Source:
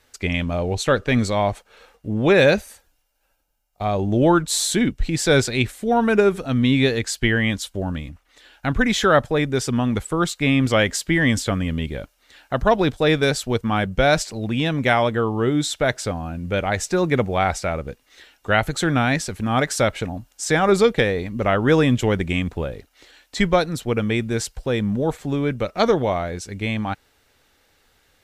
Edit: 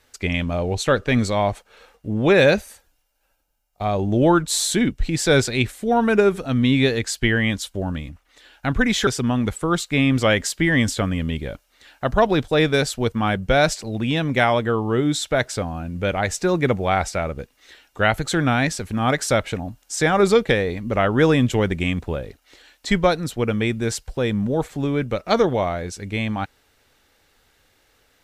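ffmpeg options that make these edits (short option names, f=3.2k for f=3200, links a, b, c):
-filter_complex "[0:a]asplit=2[a][b];[a]atrim=end=9.072[c];[b]atrim=start=9.558[d];[c][d]acrossfade=d=0.004:c1=hsin:c2=hsin"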